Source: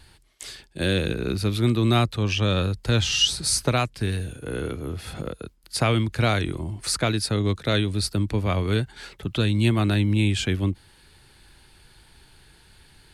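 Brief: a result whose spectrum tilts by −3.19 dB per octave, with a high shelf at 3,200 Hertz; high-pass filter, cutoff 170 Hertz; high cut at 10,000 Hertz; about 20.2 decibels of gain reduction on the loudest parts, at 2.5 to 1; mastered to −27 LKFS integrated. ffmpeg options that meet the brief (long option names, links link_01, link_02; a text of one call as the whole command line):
ffmpeg -i in.wav -af "highpass=170,lowpass=10000,highshelf=frequency=3200:gain=8,acompressor=threshold=-44dB:ratio=2.5,volume=12dB" out.wav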